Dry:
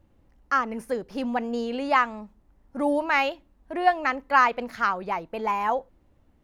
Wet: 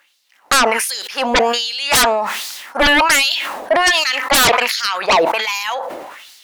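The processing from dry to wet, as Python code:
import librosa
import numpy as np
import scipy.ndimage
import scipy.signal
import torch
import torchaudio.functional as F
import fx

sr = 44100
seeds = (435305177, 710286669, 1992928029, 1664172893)

y = fx.filter_lfo_highpass(x, sr, shape='sine', hz=1.3, low_hz=540.0, high_hz=4600.0, q=2.4)
y = fx.fold_sine(y, sr, drive_db=19, ceiling_db=-5.0)
y = fx.sustainer(y, sr, db_per_s=38.0)
y = F.gain(torch.from_numpy(y), -3.5).numpy()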